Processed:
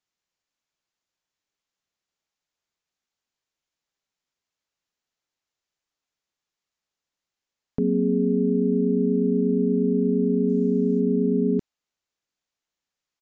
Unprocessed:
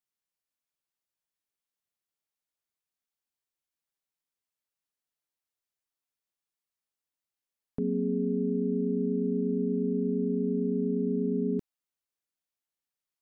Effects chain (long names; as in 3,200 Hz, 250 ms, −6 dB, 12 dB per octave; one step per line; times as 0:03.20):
0:10.48–0:10.99: background noise violet −64 dBFS
downsampling to 16,000 Hz
level +7 dB